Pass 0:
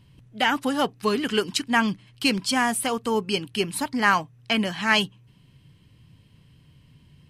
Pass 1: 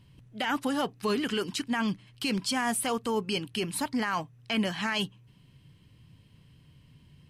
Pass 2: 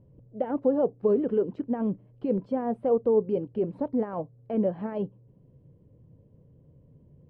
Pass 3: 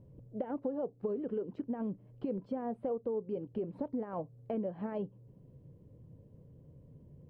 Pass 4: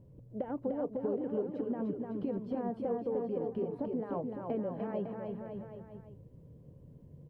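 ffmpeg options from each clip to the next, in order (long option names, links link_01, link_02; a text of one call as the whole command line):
ffmpeg -i in.wav -af "alimiter=limit=-17.5dB:level=0:latency=1:release=22,volume=-2.5dB" out.wav
ffmpeg -i in.wav -af "lowpass=frequency=520:width_type=q:width=4.1" out.wav
ffmpeg -i in.wav -af "acompressor=threshold=-34dB:ratio=5" out.wav
ffmpeg -i in.wav -af "aecho=1:1:300|555|771.8|956|1113:0.631|0.398|0.251|0.158|0.1" out.wav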